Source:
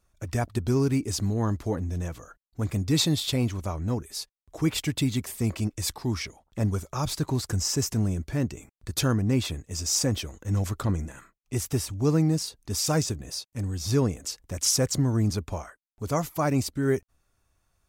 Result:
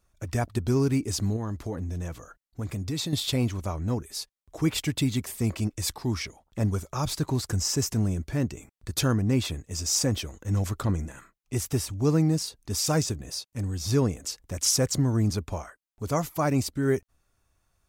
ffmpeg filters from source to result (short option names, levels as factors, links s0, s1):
-filter_complex "[0:a]asettb=1/sr,asplit=3[s0][s1][s2];[s0]atrim=end=1.364[s3];[s1]atrim=start=1.36:end=3.13,asetpts=PTS-STARTPTS,afade=t=in:d=0.004:c=qsin,afade=t=out:st=1.766:d=0.004:c=qsin,acompressor=threshold=0.0355:ratio=3:attack=3.2:release=140:knee=1:detection=peak[s4];[s2]atrim=start=3.126[s5];[s3][s4]acrossfade=d=0.004:c1=hsin:c2=qsin[s6];[s6][s5]acrossfade=d=0.004:c1=qsin:c2=hsin"